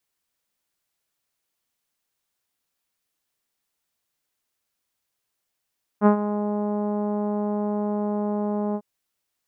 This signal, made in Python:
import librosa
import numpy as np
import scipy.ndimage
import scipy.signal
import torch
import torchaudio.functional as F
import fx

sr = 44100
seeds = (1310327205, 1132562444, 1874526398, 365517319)

y = fx.sub_voice(sr, note=56, wave='saw', cutoff_hz=890.0, q=1.2, env_oct=0.5, env_s=0.43, attack_ms=51.0, decay_s=0.1, sustain_db=-12, release_s=0.06, note_s=2.74, slope=24)